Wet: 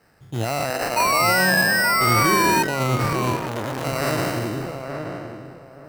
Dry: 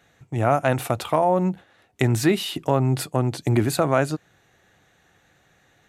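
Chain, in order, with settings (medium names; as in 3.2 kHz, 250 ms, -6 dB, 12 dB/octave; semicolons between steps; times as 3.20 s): spectral sustain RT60 1.83 s; 0.70–1.20 s: Bessel high-pass 380 Hz, order 2; peak limiter -12 dBFS, peak gain reduction 10 dB; 0.96–2.63 s: painted sound fall 900–2500 Hz -18 dBFS; sample-and-hold 13×; wow and flutter 18 cents; filtered feedback delay 875 ms, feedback 25%, low-pass 1.2 kHz, level -5.5 dB; 3.36–3.85 s: transformer saturation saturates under 1.2 kHz; trim -1.5 dB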